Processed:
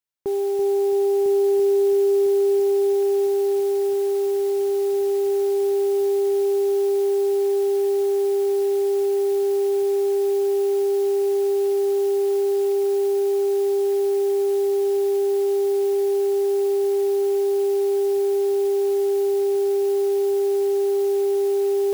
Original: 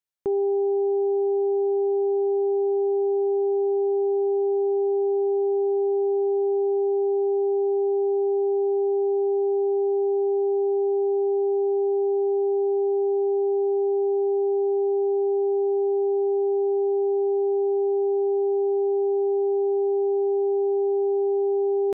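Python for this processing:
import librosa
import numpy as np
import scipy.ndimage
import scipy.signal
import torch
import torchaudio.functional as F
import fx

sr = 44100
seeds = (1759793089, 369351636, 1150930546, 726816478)

y = fx.mod_noise(x, sr, seeds[0], snr_db=23)
y = fx.echo_heads(y, sr, ms=334, heads='first and third', feedback_pct=74, wet_db=-8.5)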